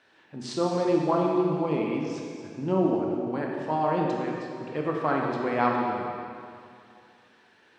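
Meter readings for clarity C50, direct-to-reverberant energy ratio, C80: 0.5 dB, -1.0 dB, 2.0 dB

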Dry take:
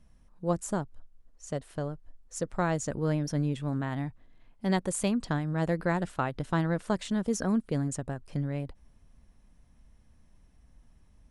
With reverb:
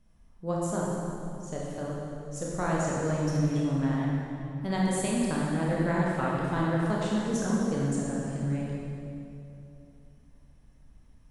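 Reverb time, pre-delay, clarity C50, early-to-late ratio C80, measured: 2.7 s, 20 ms, -2.5 dB, -1.0 dB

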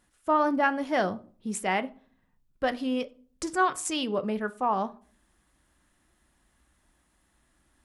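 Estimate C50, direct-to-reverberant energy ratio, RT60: 20.5 dB, 11.5 dB, 0.45 s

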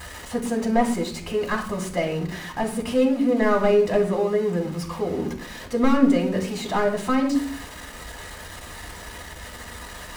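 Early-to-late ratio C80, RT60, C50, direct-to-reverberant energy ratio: 13.0 dB, 0.50 s, 9.0 dB, 1.0 dB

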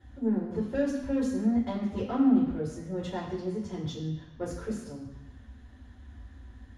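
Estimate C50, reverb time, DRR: 5.5 dB, 1.0 s, -7.5 dB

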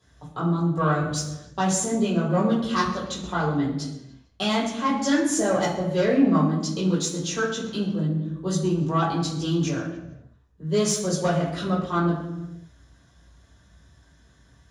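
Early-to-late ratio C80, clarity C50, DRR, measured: 7.0 dB, 4.5 dB, -8.0 dB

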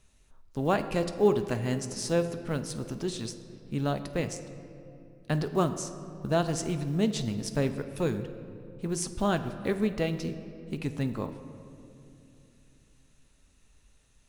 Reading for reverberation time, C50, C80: 2.8 s, 11.0 dB, 12.0 dB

